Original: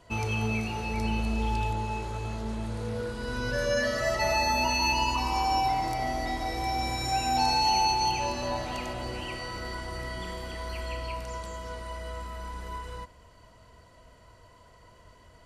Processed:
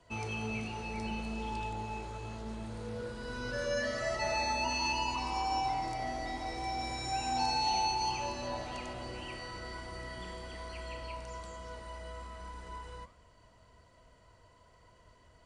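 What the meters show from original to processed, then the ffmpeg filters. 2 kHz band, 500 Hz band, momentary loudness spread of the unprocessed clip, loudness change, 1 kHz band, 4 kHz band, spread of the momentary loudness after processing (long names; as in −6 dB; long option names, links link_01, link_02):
−6.5 dB, −6.5 dB, 14 LU, −7.0 dB, −6.5 dB, −6.5 dB, 14 LU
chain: -filter_complex "[0:a]flanger=delay=6.1:depth=8.2:regen=-86:speed=1.2:shape=sinusoidal,acrossover=split=160|1500|2300[link_01][link_02][link_03][link_04];[link_01]asoftclip=type=tanh:threshold=-39dB[link_05];[link_05][link_02][link_03][link_04]amix=inputs=4:normalize=0,aresample=22050,aresample=44100,volume=-2dB"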